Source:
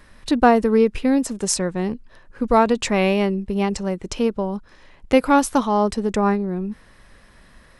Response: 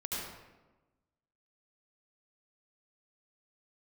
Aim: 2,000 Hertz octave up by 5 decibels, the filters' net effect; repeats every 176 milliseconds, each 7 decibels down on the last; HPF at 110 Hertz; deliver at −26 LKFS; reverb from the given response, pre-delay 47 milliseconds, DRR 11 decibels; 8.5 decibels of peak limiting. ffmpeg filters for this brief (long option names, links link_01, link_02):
-filter_complex "[0:a]highpass=110,equalizer=frequency=2000:width_type=o:gain=6.5,alimiter=limit=-10dB:level=0:latency=1,aecho=1:1:176|352|528|704|880:0.447|0.201|0.0905|0.0407|0.0183,asplit=2[link_01][link_02];[1:a]atrim=start_sample=2205,adelay=47[link_03];[link_02][link_03]afir=irnorm=-1:irlink=0,volume=-14.5dB[link_04];[link_01][link_04]amix=inputs=2:normalize=0,volume=-5.5dB"